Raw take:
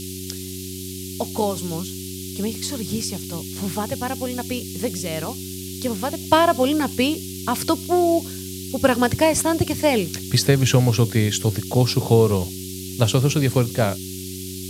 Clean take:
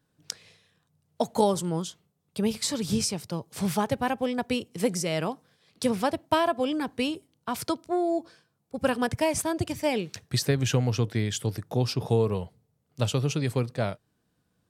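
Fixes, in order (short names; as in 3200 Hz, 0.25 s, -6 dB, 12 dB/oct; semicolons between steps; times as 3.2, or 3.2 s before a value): de-hum 93.6 Hz, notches 4; noise print and reduce 30 dB; gain 0 dB, from 6.21 s -8 dB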